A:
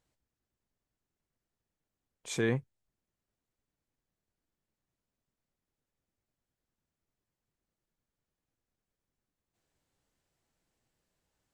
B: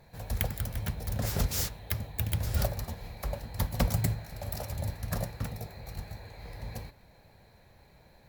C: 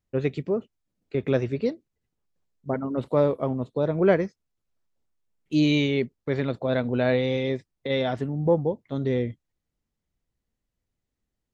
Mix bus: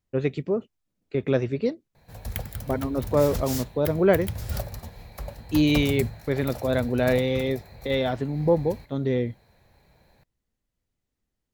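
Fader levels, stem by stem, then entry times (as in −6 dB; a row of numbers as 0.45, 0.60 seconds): muted, −1.5 dB, +0.5 dB; muted, 1.95 s, 0.00 s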